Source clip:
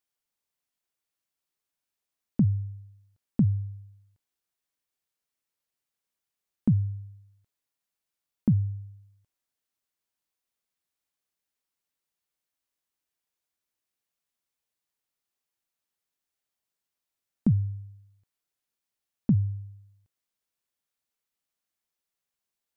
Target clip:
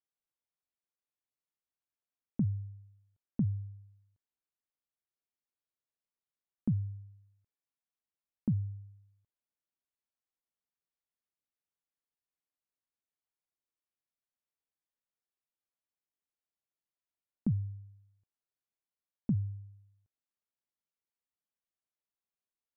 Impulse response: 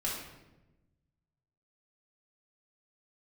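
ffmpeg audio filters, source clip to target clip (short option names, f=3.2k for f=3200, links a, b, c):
-af "lowpass=f=1.5k:p=1,volume=-8dB"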